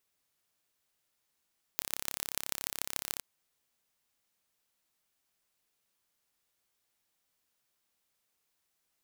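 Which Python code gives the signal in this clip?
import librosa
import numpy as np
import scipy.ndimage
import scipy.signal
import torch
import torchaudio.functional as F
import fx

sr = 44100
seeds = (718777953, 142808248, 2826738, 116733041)

y = fx.impulse_train(sr, length_s=1.43, per_s=34.1, accent_every=5, level_db=-3.5)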